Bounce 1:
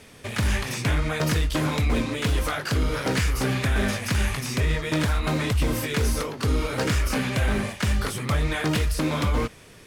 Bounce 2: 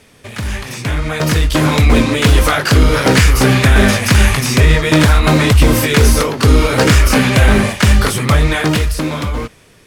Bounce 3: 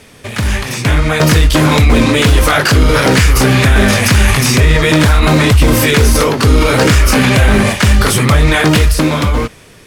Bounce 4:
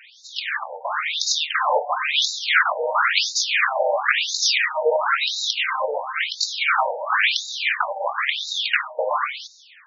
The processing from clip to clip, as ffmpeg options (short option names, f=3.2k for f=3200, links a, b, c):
-af "dynaudnorm=f=210:g=13:m=14dB,volume=1.5dB"
-af "alimiter=limit=-8dB:level=0:latency=1:release=24,volume=6.5dB"
-af "afftfilt=real='re*between(b*sr/1024,650*pow(5200/650,0.5+0.5*sin(2*PI*0.97*pts/sr))/1.41,650*pow(5200/650,0.5+0.5*sin(2*PI*0.97*pts/sr))*1.41)':imag='im*between(b*sr/1024,650*pow(5200/650,0.5+0.5*sin(2*PI*0.97*pts/sr))/1.41,650*pow(5200/650,0.5+0.5*sin(2*PI*0.97*pts/sr))*1.41)':win_size=1024:overlap=0.75"